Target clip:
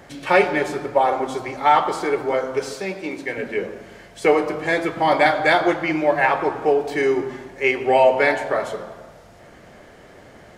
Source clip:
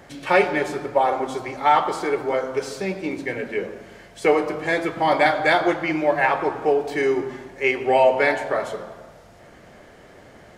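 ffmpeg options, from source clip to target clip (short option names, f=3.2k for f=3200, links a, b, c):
-filter_complex "[0:a]asettb=1/sr,asplit=3[a][b][c];[a]atrim=end=2.754[d];[b]atrim=start=2.75:end=3.38,asetpts=PTS-STARTPTS,afade=t=in:d=0.004:c=qsin,afade=t=out:st=0.626:d=0.004:c=qsin,lowshelf=f=240:g=-9.5[e];[c]atrim=start=3.376[f];[d][e]acrossfade=d=0.004:c1=hsin:c2=qsin[g];[g][f]acrossfade=d=0.004:c1=qsin:c2=hsin,volume=1.5dB"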